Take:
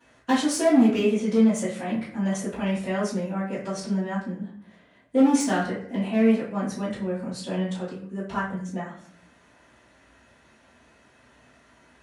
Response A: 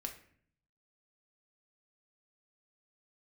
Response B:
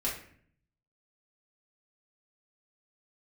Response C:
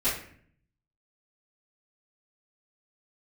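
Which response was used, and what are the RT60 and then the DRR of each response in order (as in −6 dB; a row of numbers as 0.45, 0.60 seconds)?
C; 0.55, 0.55, 0.55 seconds; 3.0, −6.5, −16.0 decibels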